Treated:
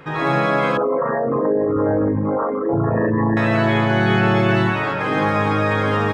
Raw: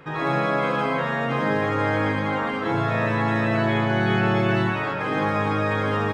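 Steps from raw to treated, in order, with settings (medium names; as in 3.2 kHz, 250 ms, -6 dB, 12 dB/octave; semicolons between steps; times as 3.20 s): 0.77–3.37 s: resonances exaggerated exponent 3; trim +4.5 dB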